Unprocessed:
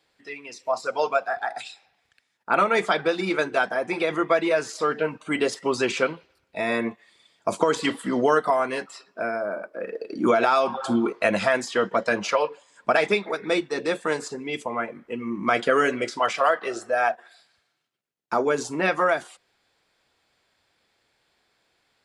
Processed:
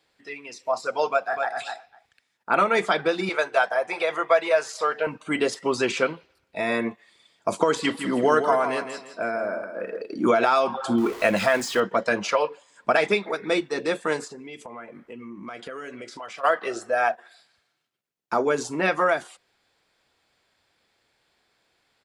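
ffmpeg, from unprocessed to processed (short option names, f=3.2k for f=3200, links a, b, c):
-filter_complex "[0:a]asplit=2[a][b];[b]afade=t=in:st=1.07:d=0.01,afade=t=out:st=1.55:d=0.01,aecho=0:1:250|500:0.501187|0.0501187[c];[a][c]amix=inputs=2:normalize=0,asettb=1/sr,asplit=3[d][e][f];[d]atrim=end=3.294[g];[e]atrim=start=3.29:end=5.07,asetpts=PTS-STARTPTS,afade=t=in:d=0.004:c=qsin,afade=t=out:st=1.776:d=0.004:c=qsin,lowshelf=f=400:t=q:w=1.5:g=-12.5[h];[f]atrim=start=5.066[i];[g][h]acrossfade=d=0.004:c1=hsin:c2=qsin[j];[j][i]acrossfade=d=0.004:c1=qsin:c2=hsin,asettb=1/sr,asplit=3[k][l][m];[k]atrim=end=7.814[n];[l]atrim=start=7.81:end=10.02,asetpts=PTS-STARTPTS,afade=t=in:d=0.004:c=qsin,afade=t=out:st=2.206:d=0.004:c=qsin,aecho=1:1:163|326|489|652:0.398|0.123|0.0383|0.0119,atrim=end_sample=97461[o];[m]atrim=start=10.016[p];[n][o]acrossfade=d=0.004:c1=hsin:c2=qsin[q];[q][p]acrossfade=d=0.004:c1=qsin:c2=hsin,asettb=1/sr,asplit=3[r][s][t];[r]atrim=end=10.984[u];[s]atrim=start=10.98:end=11.8,asetpts=PTS-STARTPTS,afade=t=in:d=0.004:c=qsin,afade=t=out:st=0.816:d=0.004:c=qsin,aeval=exprs='val(0)+0.5*0.0211*sgn(val(0))':c=same[v];[t]atrim=start=11.796[w];[u][v]acrossfade=d=0.004:c1=hsin:c2=qsin[x];[x][w]acrossfade=d=0.004:c1=qsin:c2=hsin,asplit=3[y][z][aa];[y]afade=t=out:st=14.24:d=0.02[ab];[z]acompressor=threshold=-39dB:ratio=3:attack=3.2:release=140:knee=1:detection=peak,afade=t=in:st=14.24:d=0.02,afade=t=out:st=16.43:d=0.02[ac];[aa]afade=t=in:st=16.43:d=0.02[ad];[ab][ac][ad]amix=inputs=3:normalize=0"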